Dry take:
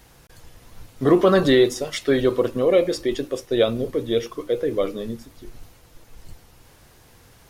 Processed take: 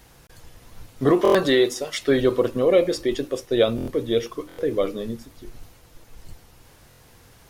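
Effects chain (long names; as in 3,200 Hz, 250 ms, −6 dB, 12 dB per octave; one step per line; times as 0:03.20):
0:01.11–0:01.99: low-shelf EQ 210 Hz −10.5 dB
buffer that repeats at 0:01.23/0:03.76/0:04.47/0:06.89, samples 1,024, times 4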